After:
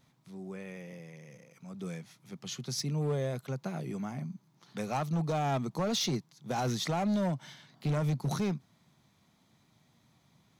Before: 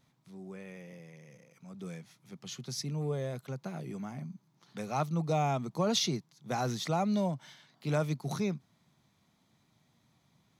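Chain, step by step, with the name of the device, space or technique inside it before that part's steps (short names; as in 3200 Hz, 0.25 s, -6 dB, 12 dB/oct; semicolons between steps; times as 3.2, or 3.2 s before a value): 7.41–8.3 low shelf 240 Hz +8 dB; limiter into clipper (limiter -24 dBFS, peak gain reduction 7.5 dB; hard clip -29 dBFS, distortion -15 dB); gain +3 dB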